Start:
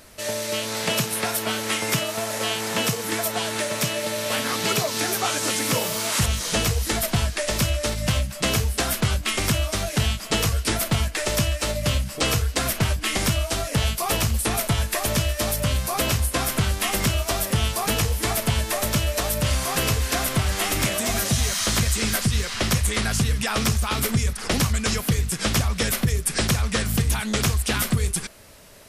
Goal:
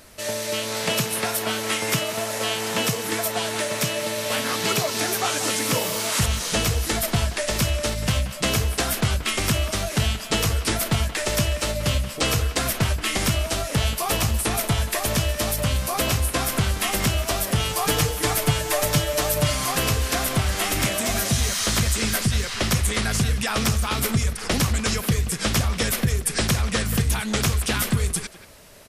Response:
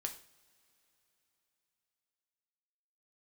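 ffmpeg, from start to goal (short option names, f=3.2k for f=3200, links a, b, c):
-filter_complex "[0:a]asettb=1/sr,asplit=3[a][b][c];[a]atrim=end=17.594[d];[b]atrim=start=17.59:end=19.72,asetpts=PTS-STARTPTS,afade=t=in:d=0.004:c=qsin,afade=t=out:st=2.126:d=0.004:c=qsin,aecho=1:1:6.7:0.69,atrim=end_sample=93933[e];[c]atrim=start=19.716[f];[d][e]acrossfade=d=0.004:c1=hsin:c2=qsin[g];[g][f]acrossfade=d=0.004:c1=qsin:c2=hsin,asplit=2[h][i];[i]adelay=180,highpass=300,lowpass=3.4k,asoftclip=type=hard:threshold=-18.5dB,volume=-11dB[j];[h][j]amix=inputs=2:normalize=0"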